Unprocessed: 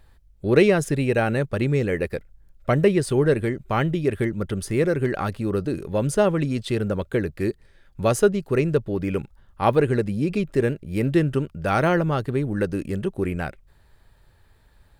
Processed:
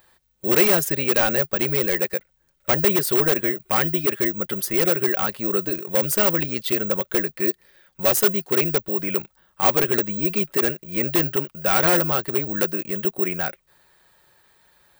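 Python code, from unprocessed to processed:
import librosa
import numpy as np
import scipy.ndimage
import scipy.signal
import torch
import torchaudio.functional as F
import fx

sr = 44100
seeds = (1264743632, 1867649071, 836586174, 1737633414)

p1 = fx.highpass(x, sr, hz=650.0, slope=6)
p2 = p1 + 0.4 * np.pad(p1, (int(5.5 * sr / 1000.0), 0))[:len(p1)]
p3 = (np.mod(10.0 ** (19.0 / 20.0) * p2 + 1.0, 2.0) - 1.0) / 10.0 ** (19.0 / 20.0)
p4 = p2 + F.gain(torch.from_numpy(p3), -3.0).numpy()
y = (np.kron(p4[::2], np.eye(2)[0]) * 2)[:len(p4)]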